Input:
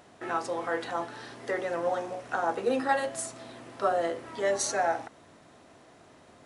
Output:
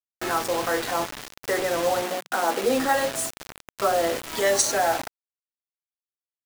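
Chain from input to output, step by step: in parallel at +2 dB: peak limiter -24 dBFS, peak gain reduction 11 dB; 4.14–4.60 s: on the sum: treble shelf 3.3 kHz -> 2.4 kHz +11 dB; bit crusher 5-bit; 2.03–2.64 s: brick-wall FIR high-pass 160 Hz

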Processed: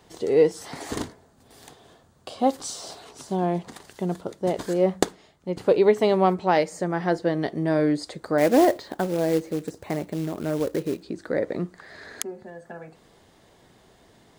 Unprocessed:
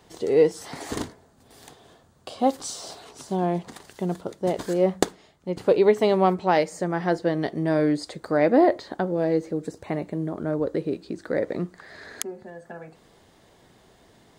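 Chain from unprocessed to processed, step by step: 8.38–11.03 s: short-mantissa float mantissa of 2-bit

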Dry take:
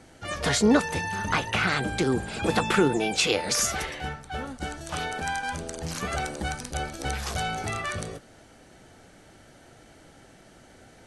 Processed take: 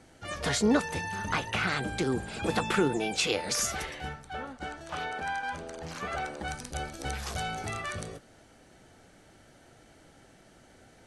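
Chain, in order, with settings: 4.33–6.48 s: overdrive pedal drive 9 dB, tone 1.7 kHz, clips at -14 dBFS; trim -4.5 dB

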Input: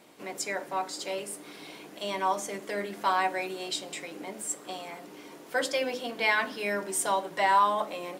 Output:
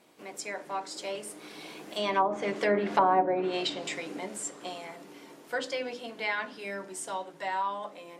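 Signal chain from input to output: Doppler pass-by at 3.03 s, 9 m/s, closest 5.3 m; low-pass that closes with the level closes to 660 Hz, closed at -27 dBFS; trim +9 dB

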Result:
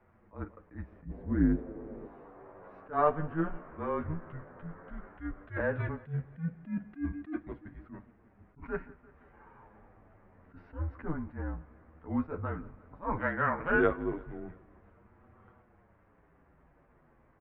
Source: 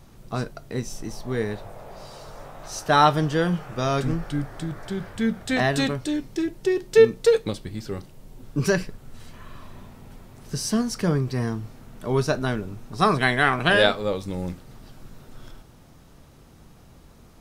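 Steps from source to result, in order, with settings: 1.05–2.07 s: resonant low shelf 650 Hz +9.5 dB, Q 1.5; bit crusher 9-bit; flange 0.13 Hz, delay 7.5 ms, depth 5.5 ms, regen +4%; on a send: feedback delay 172 ms, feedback 57%, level -22.5 dB; on the sum: mistuned SSB -160 Hz 200–2100 Hz; attacks held to a fixed rise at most 230 dB/s; trim -5.5 dB

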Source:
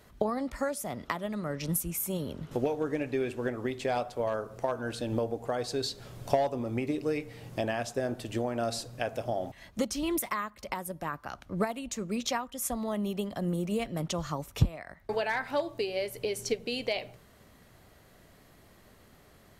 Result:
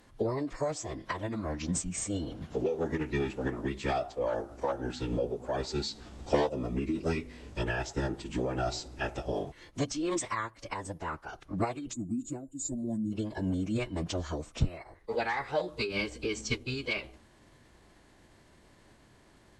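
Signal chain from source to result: time-frequency box 11.93–13.13 s, 690–6700 Hz -26 dB; formant-preserving pitch shift -11 st

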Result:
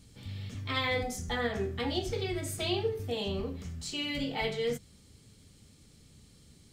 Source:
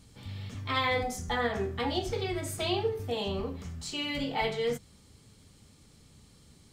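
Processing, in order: peaking EQ 970 Hz -6.5 dB 1.2 oct

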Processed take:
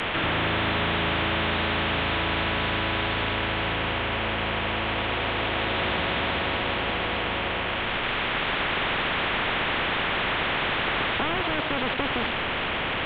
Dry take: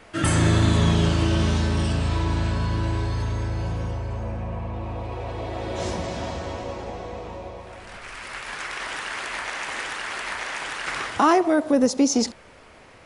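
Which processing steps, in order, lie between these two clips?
one-bit delta coder 16 kbps, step -34 dBFS; spectrum-flattening compressor 4:1; trim -4.5 dB

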